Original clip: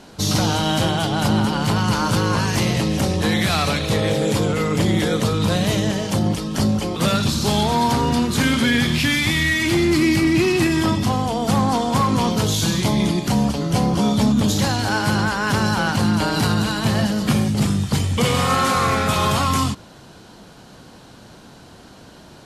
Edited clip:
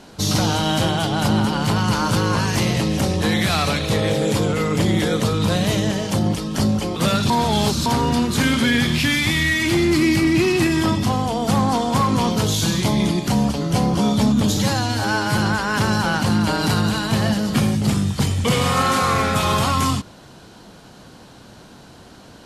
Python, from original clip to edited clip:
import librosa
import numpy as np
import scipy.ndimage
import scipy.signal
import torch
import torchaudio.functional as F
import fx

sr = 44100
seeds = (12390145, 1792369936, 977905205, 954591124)

y = fx.edit(x, sr, fx.reverse_span(start_s=7.3, length_s=0.56),
    fx.stretch_span(start_s=14.57, length_s=0.54, factor=1.5), tone=tone)